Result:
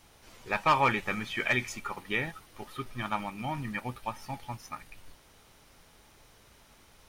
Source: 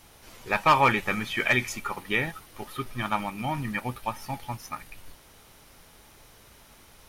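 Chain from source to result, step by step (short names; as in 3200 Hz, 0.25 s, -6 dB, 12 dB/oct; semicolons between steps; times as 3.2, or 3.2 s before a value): bell 12000 Hz -8.5 dB 0.34 oct; gain -4.5 dB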